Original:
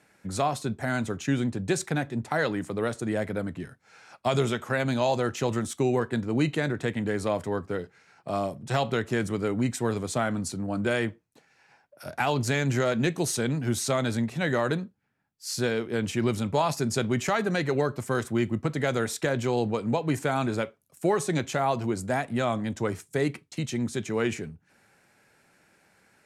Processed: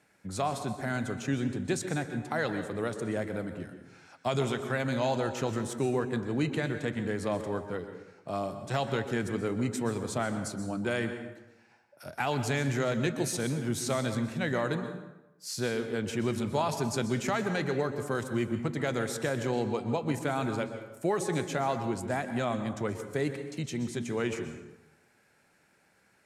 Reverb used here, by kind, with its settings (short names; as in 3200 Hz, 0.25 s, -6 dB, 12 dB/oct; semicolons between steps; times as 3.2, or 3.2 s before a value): plate-style reverb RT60 1 s, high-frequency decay 0.65×, pre-delay 0.11 s, DRR 8.5 dB; gain -4.5 dB